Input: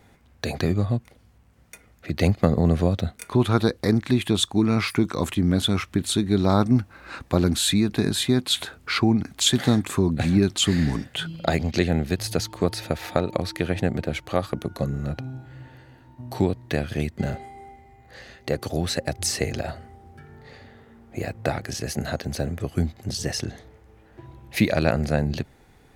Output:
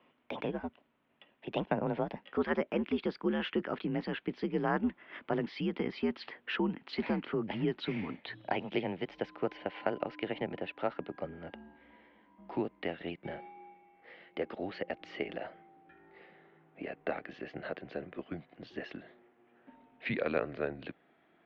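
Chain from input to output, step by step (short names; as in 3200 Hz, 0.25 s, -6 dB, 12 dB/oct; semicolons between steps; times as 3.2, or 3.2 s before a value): speed glide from 144% -> 98%; mistuned SSB -91 Hz 310–3300 Hz; gain -8.5 dB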